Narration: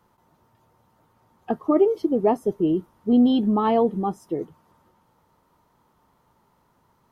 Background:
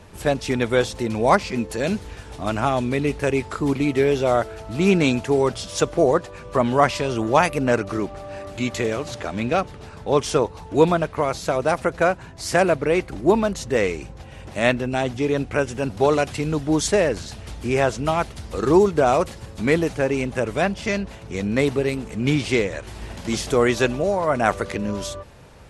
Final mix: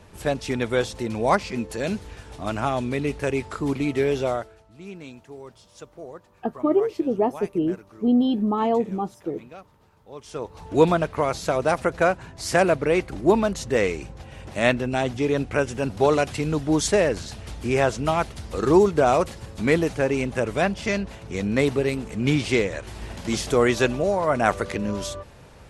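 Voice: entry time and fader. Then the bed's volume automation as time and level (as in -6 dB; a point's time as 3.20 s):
4.95 s, -2.0 dB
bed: 4.25 s -3.5 dB
4.70 s -22 dB
10.15 s -22 dB
10.67 s -1 dB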